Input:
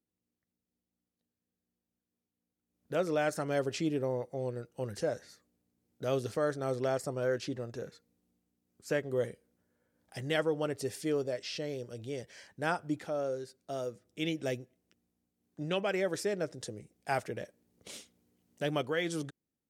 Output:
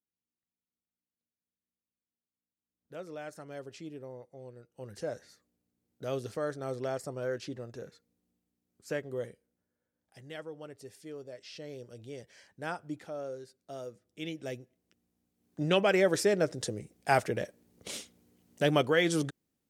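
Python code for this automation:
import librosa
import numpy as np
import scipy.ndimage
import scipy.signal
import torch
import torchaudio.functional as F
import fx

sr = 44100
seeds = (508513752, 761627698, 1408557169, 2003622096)

y = fx.gain(x, sr, db=fx.line((4.58, -12.0), (5.11, -3.0), (8.97, -3.0), (10.2, -12.5), (11.15, -12.5), (11.78, -5.0), (14.44, -5.0), (15.68, 6.5)))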